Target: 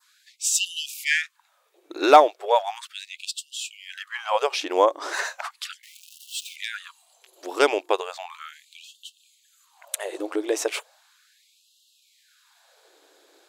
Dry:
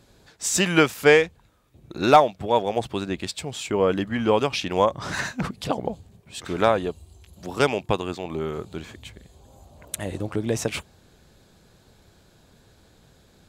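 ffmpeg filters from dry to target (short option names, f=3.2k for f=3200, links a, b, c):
-filter_complex "[0:a]asettb=1/sr,asplit=3[a][b][c];[a]atrim=end=5.834[d];[b]atrim=start=5.83:end=6.56,asetpts=PTS-STARTPTS,afade=t=in:d=0.004:c=qsin,afade=t=out:st=0.726:d=0.004:c=qsin,aeval=exprs='val(0)+0.5*0.0188*sgn(val(0))':c=same[e];[c]atrim=start=6.556[f];[d][e]acrossfade=d=0.004:c1=hsin:c2=qsin[g];[g][f]acrossfade=d=0.004:c1=qsin:c2=hsin,adynamicequalizer=threshold=0.0112:dfrequency=2800:dqfactor=0.99:tfrequency=2800:tqfactor=0.99:attack=5:release=100:ratio=0.375:range=2:mode=cutabove:tftype=bell,afftfilt=real='re*gte(b*sr/1024,260*pow(2700/260,0.5+0.5*sin(2*PI*0.36*pts/sr)))':imag='im*gte(b*sr/1024,260*pow(2700/260,0.5+0.5*sin(2*PI*0.36*pts/sr)))':win_size=1024:overlap=0.75,volume=2dB"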